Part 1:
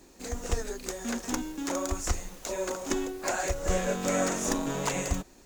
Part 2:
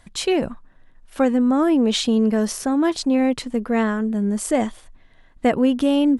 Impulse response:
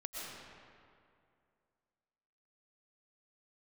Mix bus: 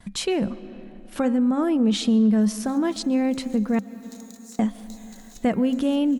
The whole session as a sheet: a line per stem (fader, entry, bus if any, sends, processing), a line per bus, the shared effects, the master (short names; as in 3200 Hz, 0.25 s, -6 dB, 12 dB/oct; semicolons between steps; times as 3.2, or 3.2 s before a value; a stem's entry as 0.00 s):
-7.5 dB, 2.45 s, no send, bell 4000 Hz +14 dB 0.22 oct; compressor, threshold -30 dBFS, peak gain reduction 8.5 dB; differentiator
+1.5 dB, 0.00 s, muted 3.79–4.59, send -17.5 dB, gate with hold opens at -46 dBFS; de-hum 268.1 Hz, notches 9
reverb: on, RT60 2.4 s, pre-delay 80 ms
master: bell 200 Hz +14.5 dB 0.32 oct; compressor 1.5:1, threshold -33 dBFS, peak gain reduction 9.5 dB